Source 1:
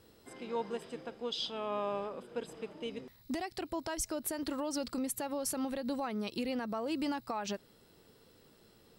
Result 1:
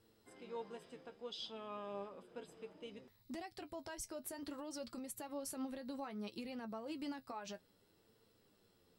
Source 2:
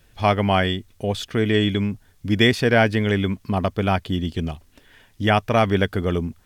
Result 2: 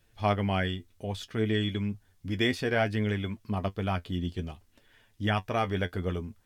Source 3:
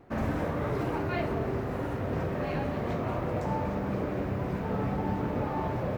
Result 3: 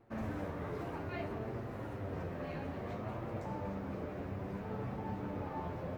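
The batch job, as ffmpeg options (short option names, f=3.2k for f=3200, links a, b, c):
-af "flanger=delay=8.8:depth=2.8:regen=44:speed=0.61:shape=sinusoidal,volume=-6dB"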